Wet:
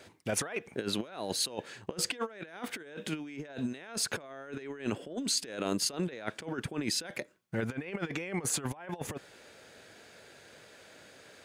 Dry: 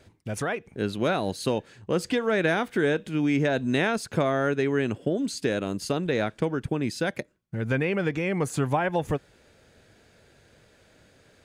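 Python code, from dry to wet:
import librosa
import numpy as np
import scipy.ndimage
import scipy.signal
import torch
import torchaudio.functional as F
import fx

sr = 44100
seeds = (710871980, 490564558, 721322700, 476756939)

y = fx.highpass(x, sr, hz=460.0, slope=6)
y = fx.over_compress(y, sr, threshold_db=-35.0, ratio=-0.5)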